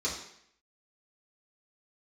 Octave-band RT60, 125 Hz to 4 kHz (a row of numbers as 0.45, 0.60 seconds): 0.65, 0.70, 0.70, 0.70, 0.75, 0.70 seconds